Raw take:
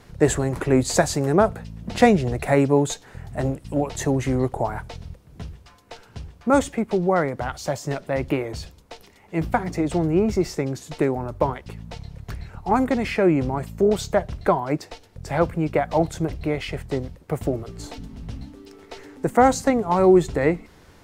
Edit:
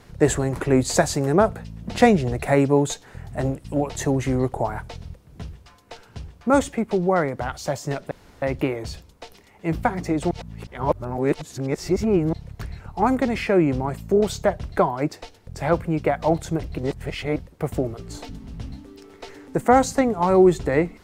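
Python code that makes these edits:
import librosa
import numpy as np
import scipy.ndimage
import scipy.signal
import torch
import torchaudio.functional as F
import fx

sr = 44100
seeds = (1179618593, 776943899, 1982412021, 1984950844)

y = fx.edit(x, sr, fx.insert_room_tone(at_s=8.11, length_s=0.31),
    fx.reverse_span(start_s=10.0, length_s=2.02),
    fx.reverse_span(start_s=16.47, length_s=0.58), tone=tone)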